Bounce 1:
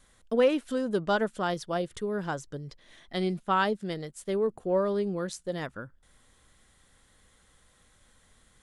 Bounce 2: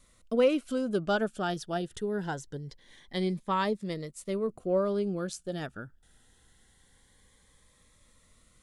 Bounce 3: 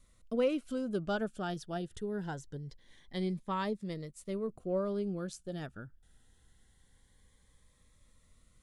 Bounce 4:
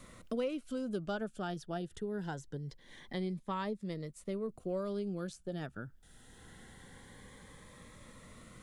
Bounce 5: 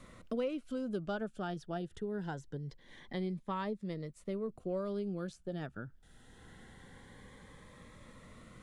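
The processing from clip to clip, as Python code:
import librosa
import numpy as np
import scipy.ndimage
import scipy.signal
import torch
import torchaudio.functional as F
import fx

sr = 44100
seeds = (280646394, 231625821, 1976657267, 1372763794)

y1 = fx.notch_cascade(x, sr, direction='rising', hz=0.24)
y2 = fx.low_shelf(y1, sr, hz=170.0, db=8.0)
y2 = y2 * librosa.db_to_amplitude(-7.0)
y3 = fx.band_squash(y2, sr, depth_pct=70)
y3 = y3 * librosa.db_to_amplitude(-2.0)
y4 = fx.high_shelf(y3, sr, hz=5900.0, db=-9.5)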